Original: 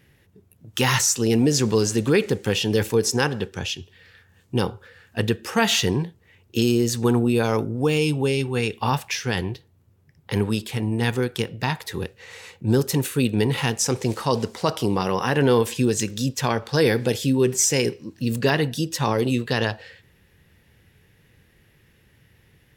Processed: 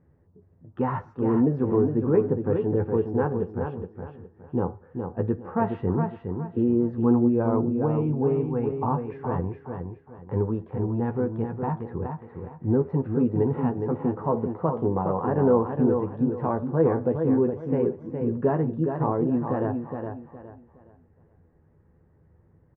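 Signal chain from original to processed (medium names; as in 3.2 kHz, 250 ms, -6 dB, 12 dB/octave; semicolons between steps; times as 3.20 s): low-pass 1.1 kHz 24 dB/octave; doubling 12 ms -6.5 dB; feedback delay 415 ms, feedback 29%, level -6 dB; trim -3 dB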